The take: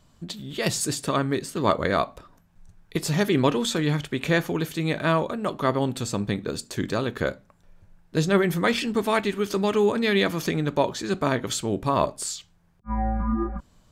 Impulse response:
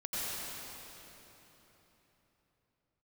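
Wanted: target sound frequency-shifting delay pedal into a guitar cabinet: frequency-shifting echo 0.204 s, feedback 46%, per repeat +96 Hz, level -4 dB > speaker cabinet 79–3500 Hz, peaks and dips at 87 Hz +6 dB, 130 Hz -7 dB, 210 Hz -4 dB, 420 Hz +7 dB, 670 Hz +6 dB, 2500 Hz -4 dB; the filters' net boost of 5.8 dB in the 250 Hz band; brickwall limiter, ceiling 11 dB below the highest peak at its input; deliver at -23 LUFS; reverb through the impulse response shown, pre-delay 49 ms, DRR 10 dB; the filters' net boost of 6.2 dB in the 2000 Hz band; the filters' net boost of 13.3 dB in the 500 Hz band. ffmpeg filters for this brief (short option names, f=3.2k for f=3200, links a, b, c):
-filter_complex "[0:a]equalizer=f=250:t=o:g=5.5,equalizer=f=500:t=o:g=8,equalizer=f=2k:t=o:g=8,alimiter=limit=-11dB:level=0:latency=1,asplit=2[a][b];[1:a]atrim=start_sample=2205,adelay=49[c];[b][c]afir=irnorm=-1:irlink=0,volume=-15.5dB[d];[a][d]amix=inputs=2:normalize=0,asplit=7[e][f][g][h][i][j][k];[f]adelay=204,afreqshift=96,volume=-4dB[l];[g]adelay=408,afreqshift=192,volume=-10.7dB[m];[h]adelay=612,afreqshift=288,volume=-17.5dB[n];[i]adelay=816,afreqshift=384,volume=-24.2dB[o];[j]adelay=1020,afreqshift=480,volume=-31dB[p];[k]adelay=1224,afreqshift=576,volume=-37.7dB[q];[e][l][m][n][o][p][q]amix=inputs=7:normalize=0,highpass=79,equalizer=f=87:t=q:w=4:g=6,equalizer=f=130:t=q:w=4:g=-7,equalizer=f=210:t=q:w=4:g=-4,equalizer=f=420:t=q:w=4:g=7,equalizer=f=670:t=q:w=4:g=6,equalizer=f=2.5k:t=q:w=4:g=-4,lowpass=f=3.5k:w=0.5412,lowpass=f=3.5k:w=1.3066,volume=-5.5dB"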